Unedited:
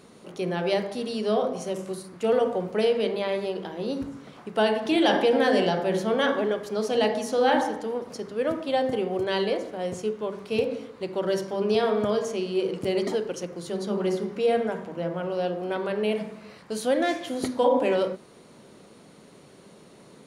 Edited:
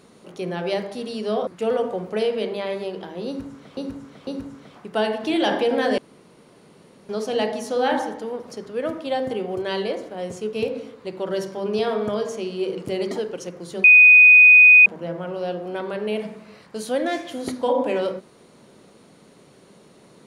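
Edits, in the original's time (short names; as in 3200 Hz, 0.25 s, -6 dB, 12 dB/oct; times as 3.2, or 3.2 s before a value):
1.47–2.09 cut
3.89–4.39 loop, 3 plays
5.6–6.71 room tone
10.15–10.49 cut
13.8–14.82 bleep 2490 Hz -6.5 dBFS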